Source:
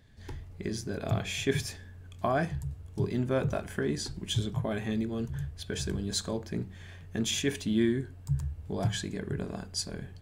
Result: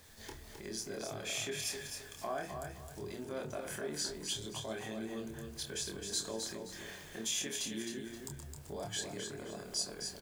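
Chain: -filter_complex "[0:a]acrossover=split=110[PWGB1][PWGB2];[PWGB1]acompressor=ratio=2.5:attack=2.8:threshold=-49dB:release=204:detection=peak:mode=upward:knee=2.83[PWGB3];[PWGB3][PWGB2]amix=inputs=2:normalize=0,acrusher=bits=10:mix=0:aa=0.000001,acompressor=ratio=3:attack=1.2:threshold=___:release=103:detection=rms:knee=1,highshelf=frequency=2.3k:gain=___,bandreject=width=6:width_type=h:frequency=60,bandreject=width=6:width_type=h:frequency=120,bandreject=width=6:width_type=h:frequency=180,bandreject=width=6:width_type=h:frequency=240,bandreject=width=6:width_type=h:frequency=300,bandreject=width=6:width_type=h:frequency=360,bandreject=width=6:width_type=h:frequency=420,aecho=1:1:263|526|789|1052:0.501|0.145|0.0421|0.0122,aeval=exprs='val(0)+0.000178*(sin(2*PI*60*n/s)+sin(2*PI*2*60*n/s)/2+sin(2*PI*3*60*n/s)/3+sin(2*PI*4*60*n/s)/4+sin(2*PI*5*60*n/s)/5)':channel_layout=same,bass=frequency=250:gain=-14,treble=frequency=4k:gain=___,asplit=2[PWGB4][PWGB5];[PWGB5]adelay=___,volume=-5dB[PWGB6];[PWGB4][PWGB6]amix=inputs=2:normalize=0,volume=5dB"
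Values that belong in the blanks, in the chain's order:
-42dB, -5.5, 10, 27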